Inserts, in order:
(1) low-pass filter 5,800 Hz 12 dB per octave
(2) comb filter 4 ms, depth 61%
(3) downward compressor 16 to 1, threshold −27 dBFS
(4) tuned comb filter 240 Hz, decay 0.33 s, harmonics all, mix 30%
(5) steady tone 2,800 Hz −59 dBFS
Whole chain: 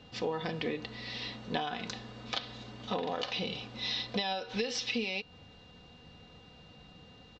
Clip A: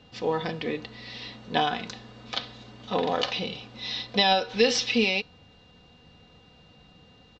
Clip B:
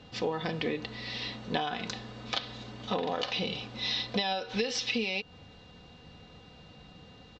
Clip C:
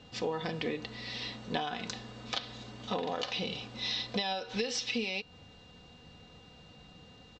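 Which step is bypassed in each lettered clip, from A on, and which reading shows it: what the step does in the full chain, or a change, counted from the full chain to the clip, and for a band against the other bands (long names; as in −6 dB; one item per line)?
3, average gain reduction 3.5 dB
4, change in integrated loudness +2.5 LU
1, 8 kHz band +2.5 dB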